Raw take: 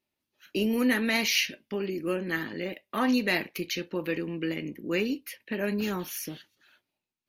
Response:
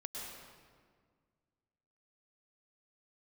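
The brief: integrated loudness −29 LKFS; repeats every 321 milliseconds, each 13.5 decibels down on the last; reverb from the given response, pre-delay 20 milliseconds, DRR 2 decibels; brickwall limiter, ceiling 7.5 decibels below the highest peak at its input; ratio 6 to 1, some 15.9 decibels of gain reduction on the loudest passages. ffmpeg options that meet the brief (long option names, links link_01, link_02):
-filter_complex "[0:a]acompressor=threshold=-39dB:ratio=6,alimiter=level_in=10dB:limit=-24dB:level=0:latency=1,volume=-10dB,aecho=1:1:321|642:0.211|0.0444,asplit=2[link_01][link_02];[1:a]atrim=start_sample=2205,adelay=20[link_03];[link_02][link_03]afir=irnorm=-1:irlink=0,volume=-1.5dB[link_04];[link_01][link_04]amix=inputs=2:normalize=0,volume=12.5dB"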